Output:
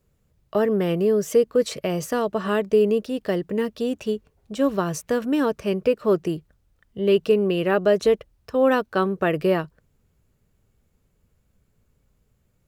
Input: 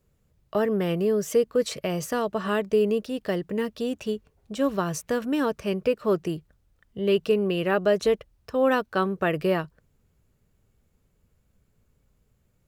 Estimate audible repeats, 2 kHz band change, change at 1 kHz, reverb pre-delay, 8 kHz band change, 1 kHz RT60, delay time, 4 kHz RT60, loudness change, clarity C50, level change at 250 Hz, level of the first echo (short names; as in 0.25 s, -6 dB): none, +1.0 dB, +2.0 dB, none, +1.0 dB, none, none, none, +3.0 dB, none, +3.0 dB, none